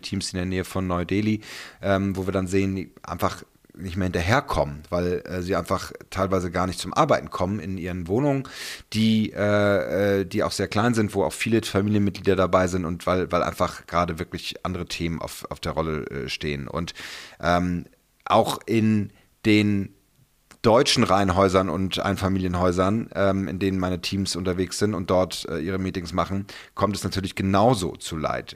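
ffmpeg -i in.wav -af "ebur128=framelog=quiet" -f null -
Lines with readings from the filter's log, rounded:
Integrated loudness:
  I:         -24.0 LUFS
  Threshold: -34.3 LUFS
Loudness range:
  LRA:         5.1 LU
  Threshold: -44.2 LUFS
  LRA low:   -26.7 LUFS
  LRA high:  -21.6 LUFS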